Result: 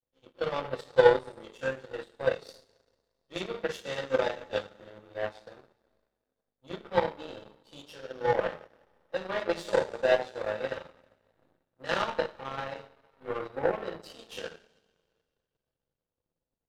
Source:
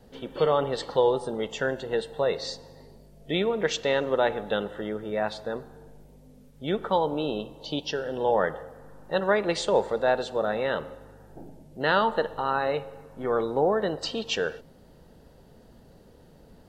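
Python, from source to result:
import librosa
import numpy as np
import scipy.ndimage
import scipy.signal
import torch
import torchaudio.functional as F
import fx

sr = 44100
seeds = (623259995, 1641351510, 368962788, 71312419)

y = fx.rev_double_slope(x, sr, seeds[0], early_s=0.52, late_s=3.6, knee_db=-17, drr_db=-8.0)
y = fx.power_curve(y, sr, exponent=2.0)
y = y * 10.0 ** (-5.5 / 20.0)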